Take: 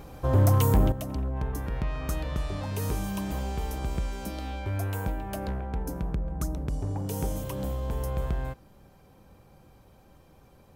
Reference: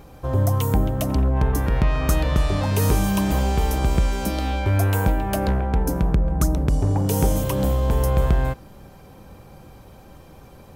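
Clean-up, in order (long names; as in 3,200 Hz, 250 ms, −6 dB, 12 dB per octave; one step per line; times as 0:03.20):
clipped peaks rebuilt −15.5 dBFS
level 0 dB, from 0:00.92 +11 dB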